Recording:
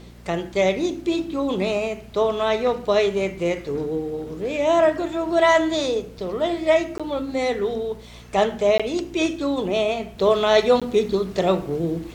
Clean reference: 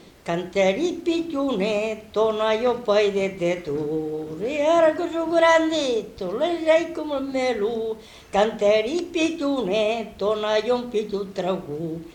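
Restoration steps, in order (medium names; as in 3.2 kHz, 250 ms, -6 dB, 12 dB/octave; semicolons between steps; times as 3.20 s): de-hum 59 Hz, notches 4; interpolate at 6.98/8.78/10.80 s, 16 ms; trim 0 dB, from 10.18 s -5 dB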